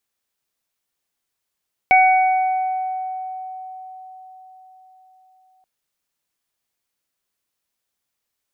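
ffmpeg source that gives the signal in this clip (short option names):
-f lavfi -i "aevalsrc='0.316*pow(10,-3*t/4.87)*sin(2*PI*750*t)+0.0376*pow(10,-3*t/1.92)*sin(2*PI*1500*t)+0.251*pow(10,-3*t/1.69)*sin(2*PI*2250*t)':d=3.73:s=44100"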